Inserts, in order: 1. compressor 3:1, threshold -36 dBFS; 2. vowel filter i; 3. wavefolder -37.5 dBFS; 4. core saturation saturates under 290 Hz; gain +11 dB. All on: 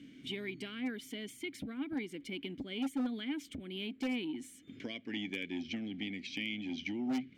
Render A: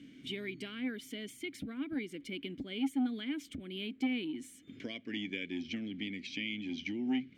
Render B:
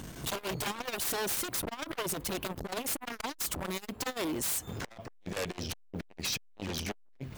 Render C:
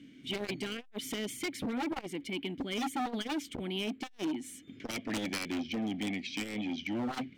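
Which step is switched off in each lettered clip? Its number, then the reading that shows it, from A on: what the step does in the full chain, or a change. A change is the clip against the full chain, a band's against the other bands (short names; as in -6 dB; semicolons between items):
3, distortion -15 dB; 2, 8 kHz band +14.5 dB; 1, mean gain reduction 7.5 dB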